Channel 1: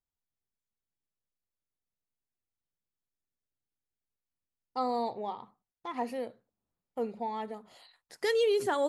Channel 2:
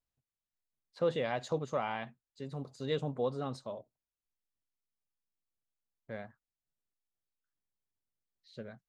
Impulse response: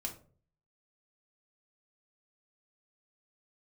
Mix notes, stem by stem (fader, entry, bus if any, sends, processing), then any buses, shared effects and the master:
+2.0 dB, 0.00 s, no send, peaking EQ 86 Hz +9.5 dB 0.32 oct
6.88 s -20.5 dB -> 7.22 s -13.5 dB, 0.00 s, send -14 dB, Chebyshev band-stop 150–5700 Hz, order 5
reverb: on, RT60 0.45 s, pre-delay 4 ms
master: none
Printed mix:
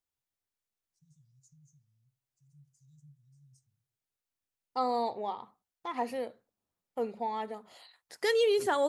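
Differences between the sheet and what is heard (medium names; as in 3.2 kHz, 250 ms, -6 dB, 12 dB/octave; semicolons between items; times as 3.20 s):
stem 2 -20.5 dB -> -11.5 dB; master: extra bass shelf 180 Hz -10.5 dB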